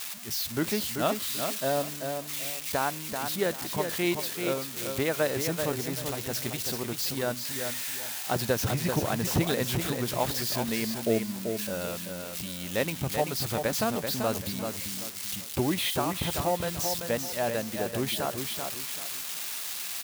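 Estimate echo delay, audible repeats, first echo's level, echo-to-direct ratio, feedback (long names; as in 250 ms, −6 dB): 386 ms, 3, −6.0 dB, −5.5 dB, 29%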